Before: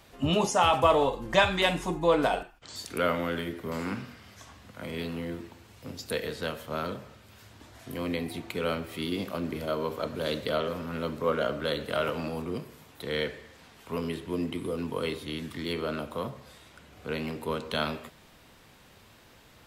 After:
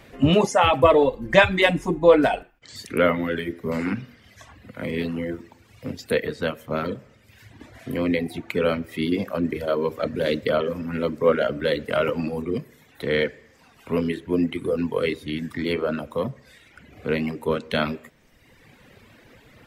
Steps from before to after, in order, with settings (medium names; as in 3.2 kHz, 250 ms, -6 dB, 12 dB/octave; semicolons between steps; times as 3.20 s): bass shelf 74 Hz +8 dB; reverb removal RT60 1.3 s; graphic EQ 125/250/500/2000 Hz +6/+8/+8/+10 dB